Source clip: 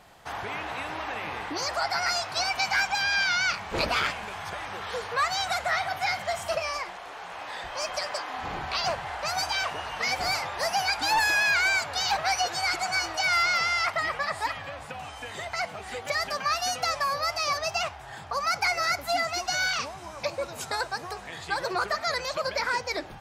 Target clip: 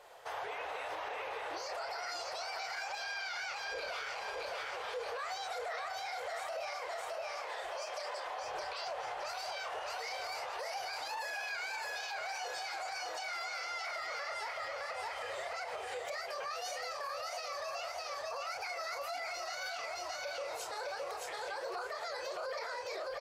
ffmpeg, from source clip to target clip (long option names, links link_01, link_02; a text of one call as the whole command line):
ffmpeg -i in.wav -filter_complex "[0:a]lowshelf=frequency=340:width_type=q:width=3:gain=-12.5,asplit=2[link_01][link_02];[link_02]adelay=28,volume=-5.5dB[link_03];[link_01][link_03]amix=inputs=2:normalize=0,flanger=delay=1.9:depth=7.4:regen=59:speed=1.6:shape=sinusoidal,aecho=1:1:615|1230|1845|2460|3075:0.596|0.22|0.0815|0.0302|0.0112,alimiter=level_in=7dB:limit=-24dB:level=0:latency=1:release=100,volume=-7dB,volume=-1dB" out.wav